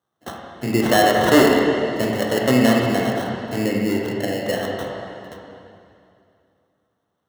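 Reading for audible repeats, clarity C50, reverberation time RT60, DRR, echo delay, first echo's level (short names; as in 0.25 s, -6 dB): none, 0.0 dB, 2.5 s, -2.0 dB, none, none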